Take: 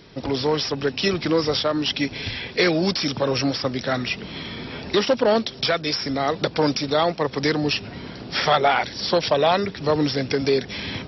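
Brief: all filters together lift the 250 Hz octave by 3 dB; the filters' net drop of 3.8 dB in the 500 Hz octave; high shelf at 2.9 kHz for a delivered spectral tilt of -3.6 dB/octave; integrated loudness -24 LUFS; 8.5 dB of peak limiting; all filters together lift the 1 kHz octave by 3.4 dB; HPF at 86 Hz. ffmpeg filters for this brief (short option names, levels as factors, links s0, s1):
-af "highpass=86,equalizer=f=250:t=o:g=6.5,equalizer=f=500:t=o:g=-9,equalizer=f=1000:t=o:g=8,highshelf=f=2900:g=-3,alimiter=limit=0.224:level=0:latency=1"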